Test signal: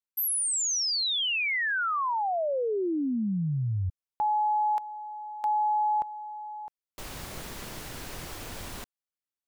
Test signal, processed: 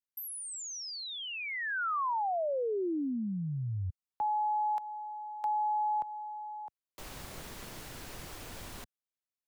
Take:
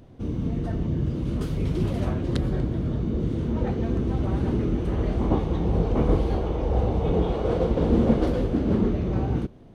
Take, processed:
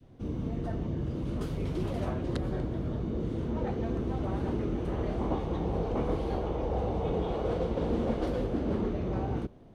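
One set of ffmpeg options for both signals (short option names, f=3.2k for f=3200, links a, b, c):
-filter_complex "[0:a]adynamicequalizer=threshold=0.0112:dfrequency=750:dqfactor=0.73:tfrequency=750:tqfactor=0.73:attack=5:release=100:ratio=0.375:range=2:mode=boostabove:tftype=bell,acrossover=split=93|290|1600[a][b][c][d];[a]acompressor=threshold=-29dB:ratio=4[e];[b]acompressor=threshold=-29dB:ratio=4[f];[c]acompressor=threshold=-25dB:ratio=4[g];[d]acompressor=threshold=-36dB:ratio=4[h];[e][f][g][h]amix=inputs=4:normalize=0,volume=-5.5dB"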